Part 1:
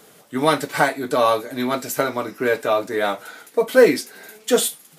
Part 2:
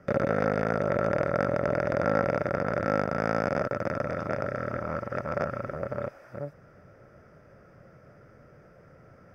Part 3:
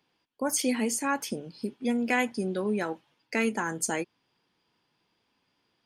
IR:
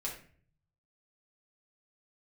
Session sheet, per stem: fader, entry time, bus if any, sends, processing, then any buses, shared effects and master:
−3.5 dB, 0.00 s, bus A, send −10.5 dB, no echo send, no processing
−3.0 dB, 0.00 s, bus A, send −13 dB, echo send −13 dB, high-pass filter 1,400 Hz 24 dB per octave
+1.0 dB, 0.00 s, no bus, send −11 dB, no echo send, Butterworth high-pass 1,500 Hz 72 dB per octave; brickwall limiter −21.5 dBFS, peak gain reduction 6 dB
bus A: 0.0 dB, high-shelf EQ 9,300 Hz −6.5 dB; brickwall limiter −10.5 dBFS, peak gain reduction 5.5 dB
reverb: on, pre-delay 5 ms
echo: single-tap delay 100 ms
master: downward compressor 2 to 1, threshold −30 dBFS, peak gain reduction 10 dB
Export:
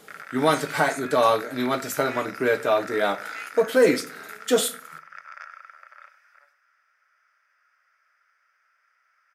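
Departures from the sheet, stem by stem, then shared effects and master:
stem 3 +1.0 dB → −9.0 dB
master: missing downward compressor 2 to 1, threshold −30 dBFS, peak gain reduction 10 dB

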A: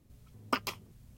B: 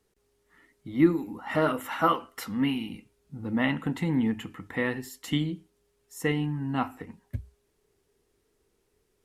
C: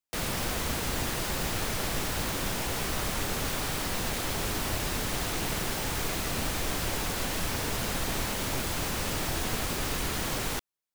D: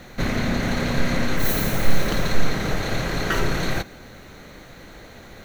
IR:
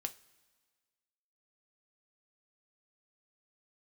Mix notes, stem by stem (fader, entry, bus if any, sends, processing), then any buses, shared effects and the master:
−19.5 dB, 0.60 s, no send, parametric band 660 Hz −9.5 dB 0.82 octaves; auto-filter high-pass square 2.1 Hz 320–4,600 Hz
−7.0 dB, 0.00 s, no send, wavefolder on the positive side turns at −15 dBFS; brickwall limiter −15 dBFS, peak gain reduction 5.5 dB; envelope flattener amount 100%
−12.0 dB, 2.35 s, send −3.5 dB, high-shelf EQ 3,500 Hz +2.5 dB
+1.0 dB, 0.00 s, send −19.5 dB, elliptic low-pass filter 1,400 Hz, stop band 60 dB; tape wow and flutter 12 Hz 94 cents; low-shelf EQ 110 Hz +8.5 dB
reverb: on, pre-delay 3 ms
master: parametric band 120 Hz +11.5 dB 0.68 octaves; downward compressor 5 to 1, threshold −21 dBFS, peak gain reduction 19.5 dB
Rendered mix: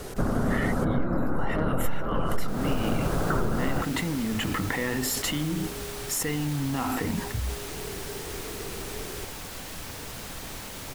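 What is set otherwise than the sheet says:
stem A −19.5 dB → −28.0 dB
stem D: missing low-shelf EQ 110 Hz +8.5 dB
master: missing parametric band 120 Hz +11.5 dB 0.68 octaves

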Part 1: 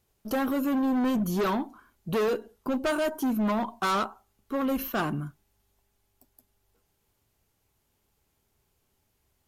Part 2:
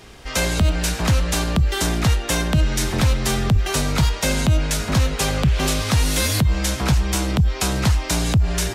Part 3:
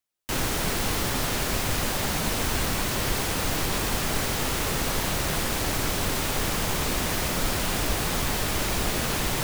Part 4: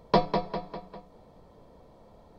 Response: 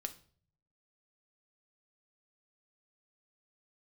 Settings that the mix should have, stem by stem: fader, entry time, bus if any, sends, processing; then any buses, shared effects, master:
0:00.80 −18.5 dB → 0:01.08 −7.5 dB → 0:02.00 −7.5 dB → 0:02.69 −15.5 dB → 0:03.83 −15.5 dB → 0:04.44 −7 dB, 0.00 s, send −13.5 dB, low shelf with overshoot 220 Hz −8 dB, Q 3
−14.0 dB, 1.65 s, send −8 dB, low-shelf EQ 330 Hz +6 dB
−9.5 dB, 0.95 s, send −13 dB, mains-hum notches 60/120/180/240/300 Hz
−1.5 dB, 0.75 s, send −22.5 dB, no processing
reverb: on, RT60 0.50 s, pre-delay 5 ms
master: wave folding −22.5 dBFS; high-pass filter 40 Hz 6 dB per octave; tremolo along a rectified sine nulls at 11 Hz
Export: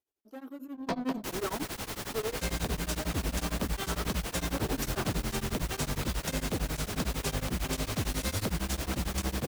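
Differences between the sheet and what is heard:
stem 2: entry 1.65 s → 2.05 s
stem 4 −1.5 dB → −8.5 dB

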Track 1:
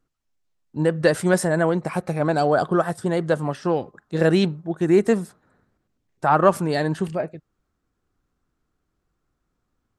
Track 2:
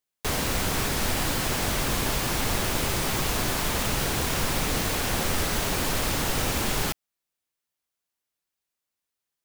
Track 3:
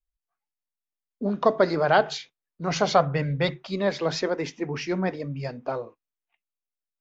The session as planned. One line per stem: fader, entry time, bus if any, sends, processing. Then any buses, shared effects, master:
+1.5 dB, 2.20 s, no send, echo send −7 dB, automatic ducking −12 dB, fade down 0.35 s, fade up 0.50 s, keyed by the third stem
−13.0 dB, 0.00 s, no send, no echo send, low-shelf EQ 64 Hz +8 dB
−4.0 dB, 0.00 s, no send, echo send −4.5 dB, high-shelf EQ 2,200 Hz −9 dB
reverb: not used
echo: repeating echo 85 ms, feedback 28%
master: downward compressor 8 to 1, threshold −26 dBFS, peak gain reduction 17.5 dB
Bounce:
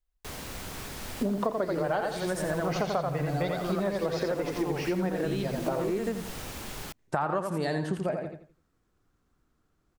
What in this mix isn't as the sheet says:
stem 1: entry 2.20 s → 0.90 s
stem 2: missing low-shelf EQ 64 Hz +8 dB
stem 3 −4.0 dB → +6.5 dB

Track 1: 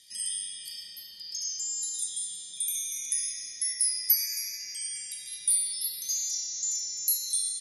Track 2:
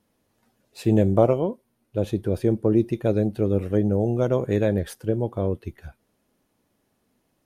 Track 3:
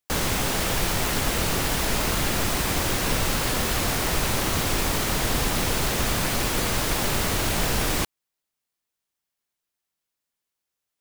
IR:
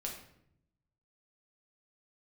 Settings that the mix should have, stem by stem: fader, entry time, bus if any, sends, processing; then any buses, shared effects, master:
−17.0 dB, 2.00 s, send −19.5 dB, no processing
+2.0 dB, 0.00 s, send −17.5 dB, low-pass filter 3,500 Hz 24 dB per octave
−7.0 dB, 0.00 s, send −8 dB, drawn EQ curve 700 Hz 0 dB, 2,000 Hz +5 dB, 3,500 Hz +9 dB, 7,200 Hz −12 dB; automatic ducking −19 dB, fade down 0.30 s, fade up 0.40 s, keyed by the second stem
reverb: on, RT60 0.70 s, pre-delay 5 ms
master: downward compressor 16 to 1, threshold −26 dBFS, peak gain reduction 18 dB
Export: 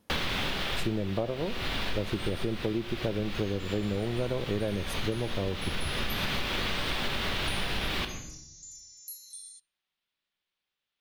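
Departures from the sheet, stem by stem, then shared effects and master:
stem 2: missing low-pass filter 3,500 Hz 24 dB per octave
stem 3: send −8 dB → −0.5 dB

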